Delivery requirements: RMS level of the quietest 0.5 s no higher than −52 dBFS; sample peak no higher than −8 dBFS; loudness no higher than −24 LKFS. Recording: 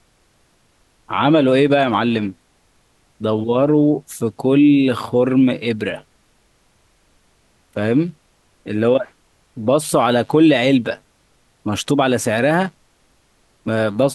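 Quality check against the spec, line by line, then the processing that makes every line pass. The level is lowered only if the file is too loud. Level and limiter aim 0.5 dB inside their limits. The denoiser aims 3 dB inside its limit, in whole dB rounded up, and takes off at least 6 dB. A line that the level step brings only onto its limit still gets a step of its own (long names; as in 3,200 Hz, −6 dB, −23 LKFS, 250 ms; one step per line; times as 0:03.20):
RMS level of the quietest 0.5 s −59 dBFS: in spec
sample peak −2.0 dBFS: out of spec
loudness −17.0 LKFS: out of spec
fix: level −7.5 dB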